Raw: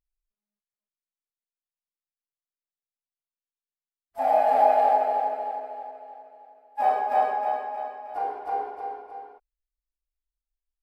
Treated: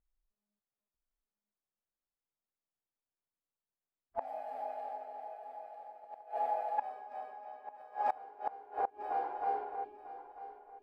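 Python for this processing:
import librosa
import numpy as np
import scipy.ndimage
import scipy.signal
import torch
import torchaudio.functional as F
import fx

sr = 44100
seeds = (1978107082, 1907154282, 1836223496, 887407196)

p1 = fx.env_lowpass(x, sr, base_hz=1200.0, full_db=-19.5)
p2 = fx.spec_erase(p1, sr, start_s=8.9, length_s=0.3, low_hz=410.0, high_hz=2200.0)
p3 = p2 + fx.echo_feedback(p2, sr, ms=945, feedback_pct=20, wet_db=-8.5, dry=0)
p4 = fx.gate_flip(p3, sr, shuts_db=-24.0, range_db=-25)
y = F.gain(torch.from_numpy(p4), 3.0).numpy()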